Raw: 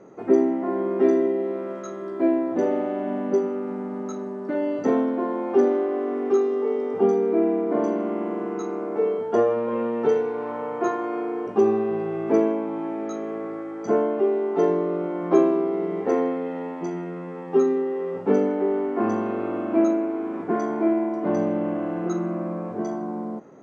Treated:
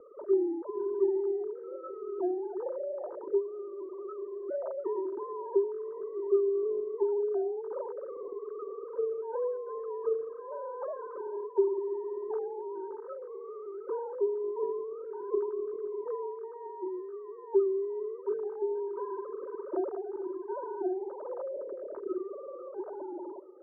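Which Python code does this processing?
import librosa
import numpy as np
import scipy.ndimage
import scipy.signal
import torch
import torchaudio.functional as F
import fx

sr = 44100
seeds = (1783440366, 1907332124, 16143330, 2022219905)

y = fx.sine_speech(x, sr)
y = scipy.signal.sosfilt(scipy.signal.butter(6, 1300.0, 'lowpass', fs=sr, output='sos'), y)
y = y + 0.55 * np.pad(y, (int(3.2 * sr / 1000.0), 0))[:len(y)]
y = fx.echo_banded(y, sr, ms=440, feedback_pct=79, hz=400.0, wet_db=-24.0)
y = fx.band_squash(y, sr, depth_pct=40)
y = F.gain(torch.from_numpy(y), -8.5).numpy()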